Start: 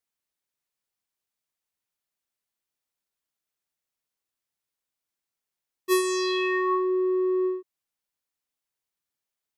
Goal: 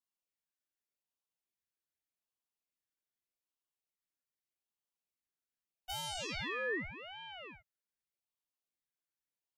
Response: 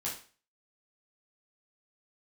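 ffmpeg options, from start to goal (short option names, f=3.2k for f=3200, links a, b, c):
-af "alimiter=limit=-20.5dB:level=0:latency=1,lowshelf=f=590:t=q:w=3:g=-12.5,aeval=exprs='val(0)*sin(2*PI*1300*n/s+1300*0.55/0.83*sin(2*PI*0.83*n/s))':c=same,volume=-8dB"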